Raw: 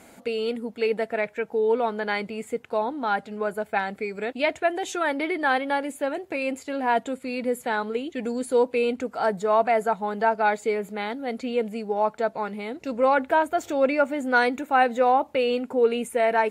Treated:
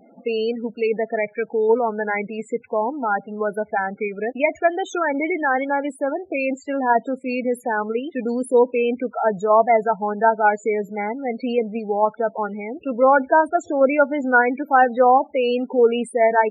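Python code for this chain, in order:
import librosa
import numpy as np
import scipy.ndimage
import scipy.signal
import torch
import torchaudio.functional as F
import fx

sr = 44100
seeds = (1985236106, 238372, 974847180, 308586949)

p1 = fx.level_steps(x, sr, step_db=10)
p2 = x + F.gain(torch.from_numpy(p1), 1.0).numpy()
y = fx.spec_topn(p2, sr, count=16)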